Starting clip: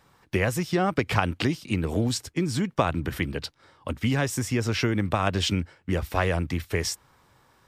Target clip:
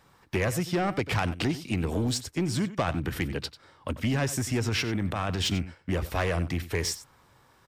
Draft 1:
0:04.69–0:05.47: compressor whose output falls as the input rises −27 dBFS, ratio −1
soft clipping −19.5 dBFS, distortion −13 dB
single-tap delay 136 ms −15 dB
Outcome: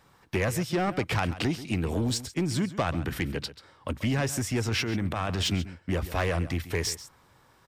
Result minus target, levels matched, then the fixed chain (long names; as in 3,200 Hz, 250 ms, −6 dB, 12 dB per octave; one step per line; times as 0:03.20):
echo 43 ms late
0:04.69–0:05.47: compressor whose output falls as the input rises −27 dBFS, ratio −1
soft clipping −19.5 dBFS, distortion −13 dB
single-tap delay 93 ms −15 dB